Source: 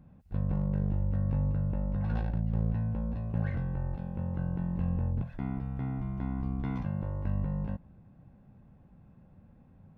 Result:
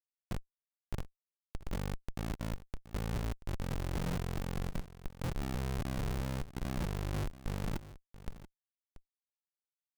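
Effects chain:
high-pass filter 72 Hz 12 dB per octave
compressor whose output falls as the input rises −39 dBFS, ratio −0.5
comparator with hysteresis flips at −38 dBFS
on a send: single-tap delay 683 ms −16 dB
on the sum: level +7.5 dB

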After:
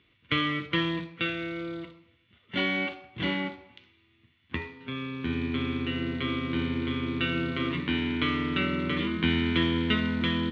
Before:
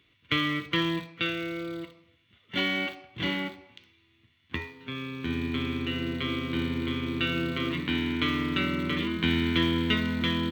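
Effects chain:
high-frequency loss of the air 170 metres
convolution reverb RT60 0.55 s, pre-delay 3 ms, DRR 13 dB
level +1.5 dB

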